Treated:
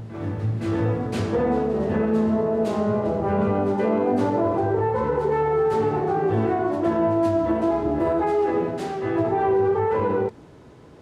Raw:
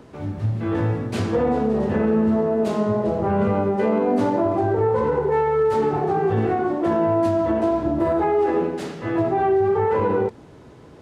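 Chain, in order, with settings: reverse echo 0.511 s -9 dB; gain -2 dB

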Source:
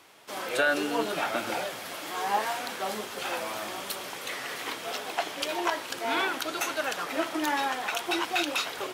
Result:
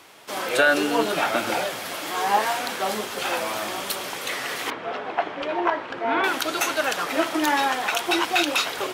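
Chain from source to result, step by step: 4.7–6.24 LPF 1800 Hz 12 dB/oct; gain +6.5 dB

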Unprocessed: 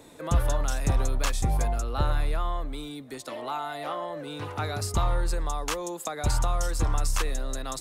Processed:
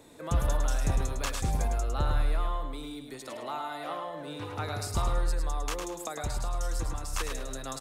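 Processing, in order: 5.31–7.13 compressor, threshold -25 dBFS, peak gain reduction 6 dB; on a send: feedback echo 0.105 s, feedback 33%, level -6 dB; on the sum: gain -4 dB

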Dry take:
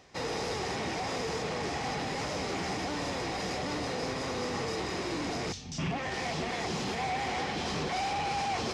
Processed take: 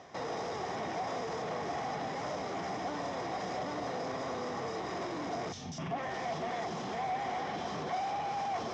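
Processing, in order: limiter -35 dBFS, peak gain reduction 11.5 dB; speaker cabinet 110–6200 Hz, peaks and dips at 680 Hz +8 dB, 1100 Hz +4 dB, 2600 Hz -7 dB, 4400 Hz -9 dB; gain +4 dB

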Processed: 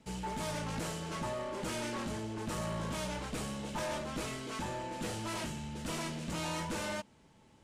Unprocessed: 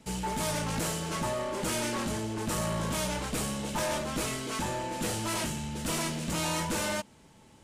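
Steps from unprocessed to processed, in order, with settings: high shelf 8800 Hz -11 dB; gain -5.5 dB

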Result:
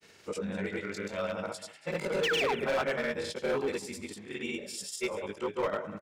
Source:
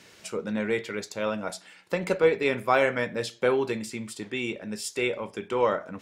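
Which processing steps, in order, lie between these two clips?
short-time reversal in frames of 59 ms; painted sound fall, 2.27–2.55, 350–3700 Hz -27 dBFS; grains 0.1 s, grains 20/s, pitch spread up and down by 0 st; on a send: echo 0.193 s -16.5 dB; on the sum: overloaded stage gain 25 dB

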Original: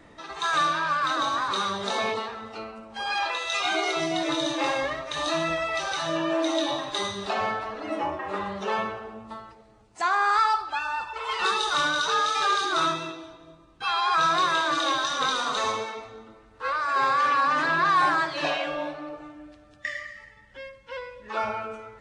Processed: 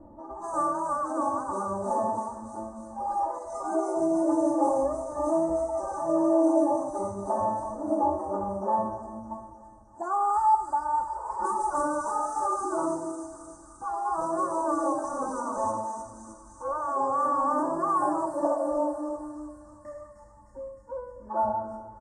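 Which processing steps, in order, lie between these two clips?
low-pass opened by the level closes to 2900 Hz, open at -19.5 dBFS; elliptic band-stop 940–8400 Hz, stop band 80 dB; bell 120 Hz +4 dB 1.1 oct; comb 3.4 ms, depth 95%; on a send: thin delay 0.307 s, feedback 69%, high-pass 2900 Hz, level -3 dB

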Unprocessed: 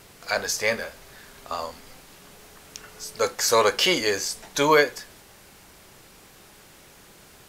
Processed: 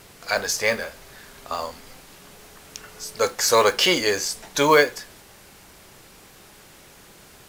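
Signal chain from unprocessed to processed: modulation noise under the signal 26 dB; gain +2 dB; Vorbis 192 kbps 44100 Hz

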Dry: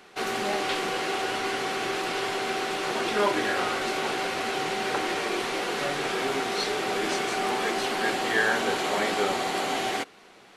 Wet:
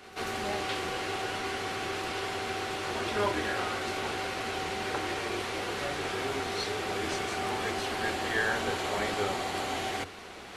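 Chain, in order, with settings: octaver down 2 oct, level -5 dB; reverse; upward compressor, threshold -28 dBFS; reverse; pre-echo 0.141 s -16 dB; gain -5 dB

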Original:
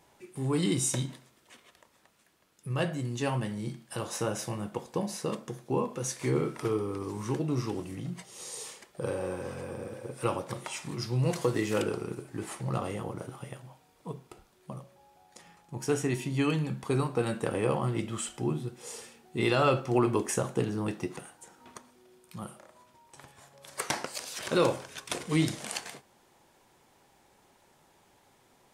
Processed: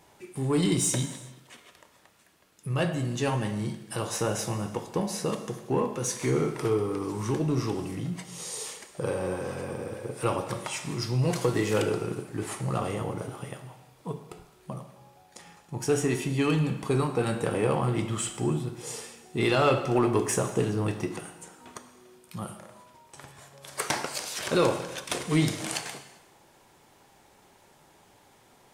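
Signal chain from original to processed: in parallel at -3.5 dB: soft clip -29 dBFS, distortion -8 dB; on the sum: non-linear reverb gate 0.42 s falling, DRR 9 dB

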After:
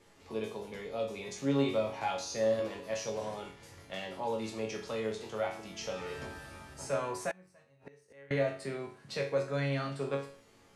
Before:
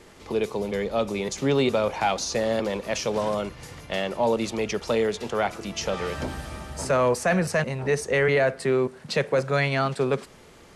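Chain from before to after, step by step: resonator bank F#2 minor, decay 0.45 s; 7.31–8.31 flipped gate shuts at -35 dBFS, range -26 dB; gain +3.5 dB

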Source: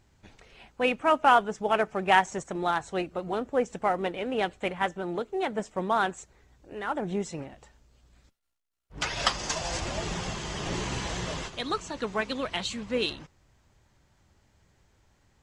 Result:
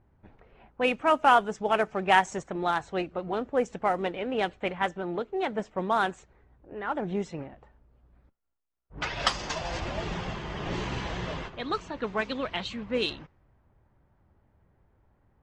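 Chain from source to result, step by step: low-pass opened by the level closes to 1200 Hz, open at -20.5 dBFS

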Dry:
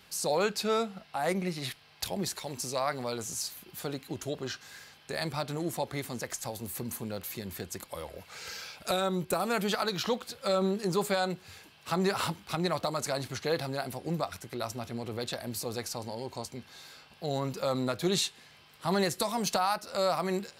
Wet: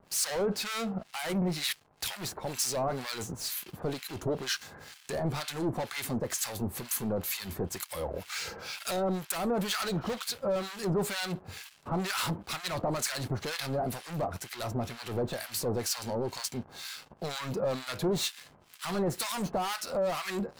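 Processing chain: sample leveller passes 5; harmonic tremolo 2.1 Hz, depth 100%, crossover 1100 Hz; gain -6.5 dB

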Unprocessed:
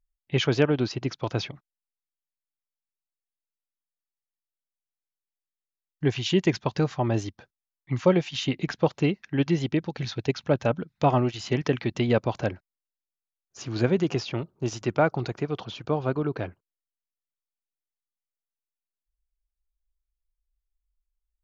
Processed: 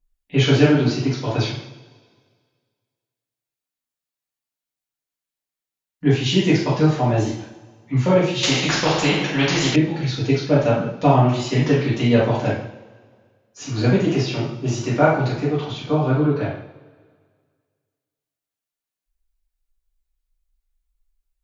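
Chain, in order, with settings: two-slope reverb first 0.59 s, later 1.9 s, from -19 dB, DRR -9.5 dB; 8.43–9.76 spectral compressor 2:1; gain -3.5 dB

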